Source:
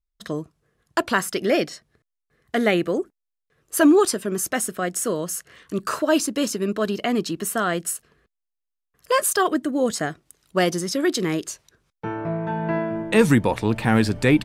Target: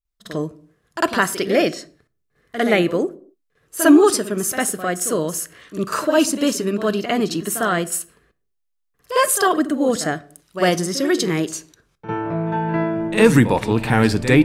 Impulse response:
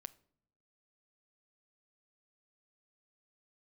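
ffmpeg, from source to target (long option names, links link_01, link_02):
-filter_complex "[0:a]asplit=2[link_01][link_02];[1:a]atrim=start_sample=2205,afade=type=out:start_time=0.34:duration=0.01,atrim=end_sample=15435,adelay=52[link_03];[link_02][link_03]afir=irnorm=-1:irlink=0,volume=16.5dB[link_04];[link_01][link_04]amix=inputs=2:normalize=0,volume=-8dB"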